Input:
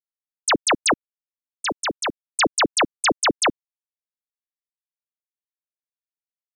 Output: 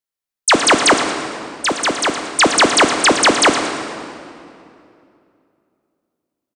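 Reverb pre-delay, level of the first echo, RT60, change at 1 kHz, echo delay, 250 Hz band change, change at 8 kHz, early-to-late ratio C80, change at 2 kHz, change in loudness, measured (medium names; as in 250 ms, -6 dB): 8 ms, -11.5 dB, 2.7 s, +8.5 dB, 115 ms, +9.0 dB, +8.0 dB, 6.0 dB, +8.0 dB, +7.5 dB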